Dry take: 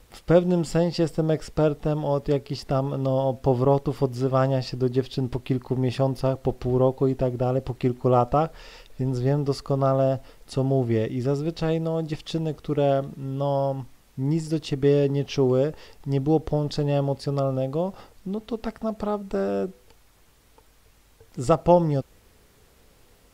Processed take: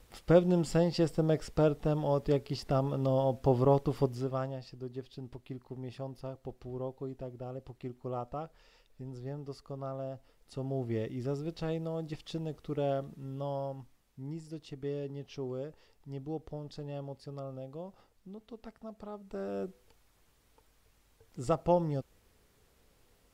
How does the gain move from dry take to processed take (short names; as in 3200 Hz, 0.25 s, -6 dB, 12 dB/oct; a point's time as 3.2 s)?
4.03 s -5.5 dB
4.6 s -18 dB
10.16 s -18 dB
10.99 s -10.5 dB
13.26 s -10.5 dB
14.41 s -17.5 dB
19.1 s -17.5 dB
19.63 s -10 dB